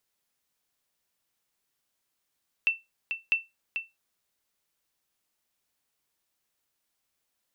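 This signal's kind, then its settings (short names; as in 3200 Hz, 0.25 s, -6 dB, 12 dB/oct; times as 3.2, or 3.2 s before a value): sonar ping 2680 Hz, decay 0.20 s, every 0.65 s, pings 2, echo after 0.44 s, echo -8 dB -15.5 dBFS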